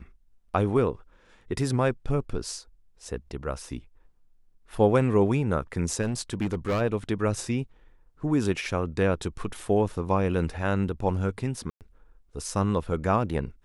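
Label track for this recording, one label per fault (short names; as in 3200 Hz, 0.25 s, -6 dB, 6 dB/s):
6.020000	6.820000	clipped -22.5 dBFS
11.700000	11.810000	gap 0.108 s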